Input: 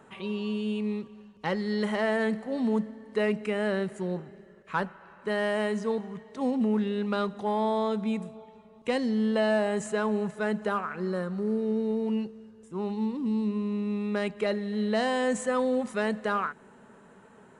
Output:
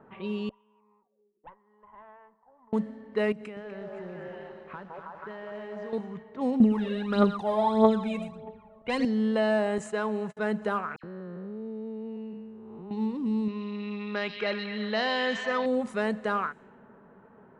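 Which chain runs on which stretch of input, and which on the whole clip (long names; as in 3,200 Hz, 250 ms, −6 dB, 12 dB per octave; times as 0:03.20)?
0:00.49–0:02.73: envelope filter 310–1,000 Hz, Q 16, up, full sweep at −28 dBFS + tube saturation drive 41 dB, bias 0.65 + high shelf with overshoot 4,200 Hz −9 dB, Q 3
0:03.32–0:05.93: echo through a band-pass that steps 160 ms, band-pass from 560 Hz, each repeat 0.7 octaves, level −1.5 dB + downward compressor, threshold −37 dBFS + feedback echo at a low word length 247 ms, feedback 55%, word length 9 bits, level −6.5 dB
0:06.60–0:09.05: single-tap delay 114 ms −9 dB + phase shifter 1.6 Hz, delay 1.9 ms, feedback 69%
0:09.78–0:10.37: low-shelf EQ 290 Hz −6 dB + noise gate −42 dBFS, range −34 dB
0:10.96–0:12.91: spectrum smeared in time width 338 ms + downward compressor 2 to 1, threshold −41 dBFS + all-pass dispersion lows, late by 75 ms, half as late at 2,400 Hz
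0:13.48–0:15.66: Butterworth low-pass 5,600 Hz + tilt shelving filter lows −6 dB, about 910 Hz + echo through a band-pass that steps 126 ms, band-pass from 3,700 Hz, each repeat −0.7 octaves, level −2 dB
whole clip: high-shelf EQ 4,900 Hz −6 dB; low-pass that shuts in the quiet parts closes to 1,300 Hz, open at −27.5 dBFS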